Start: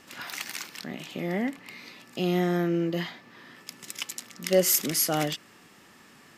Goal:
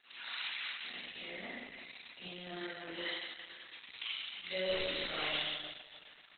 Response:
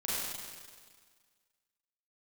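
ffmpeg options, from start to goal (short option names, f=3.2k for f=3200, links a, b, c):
-filter_complex "[0:a]aderivative,asettb=1/sr,asplit=3[a][b][c];[a]atrim=end=1.004[d];[b]atrim=start=1:end=2.47,asetpts=PTS-STARTPTS,afade=t=in:d=0.004:c=qsin,afade=t=out:st=1.466:d=0.004:c=qsin,acrossover=split=260[e][f];[f]acompressor=threshold=-49dB:ratio=10[g];[e][g]amix=inputs=2:normalize=0[h];[c]atrim=start=2.466[i];[d][h]acrossfade=d=0.004:c1=hsin:c2=qsin[j];[j][i]acrossfade=d=0.004:c1=qsin:c2=hsin,asplit=2[k][l];[l]aeval=exprs='clip(val(0),-1,0.106)':c=same,volume=-9.5dB[m];[k][m]amix=inputs=2:normalize=0[n];[1:a]atrim=start_sample=2205[o];[n][o]afir=irnorm=-1:irlink=0,volume=2.5dB" -ar 48000 -c:a libopus -b:a 8k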